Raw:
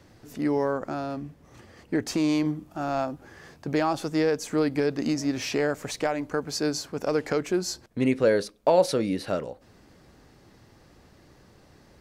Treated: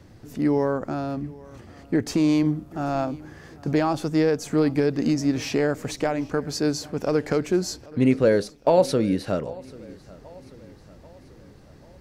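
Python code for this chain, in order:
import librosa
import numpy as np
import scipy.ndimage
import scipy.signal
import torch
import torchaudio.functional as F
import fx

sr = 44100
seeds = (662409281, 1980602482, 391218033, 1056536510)

p1 = fx.low_shelf(x, sr, hz=310.0, db=8.0)
y = p1 + fx.echo_feedback(p1, sr, ms=789, feedback_pct=53, wet_db=-22, dry=0)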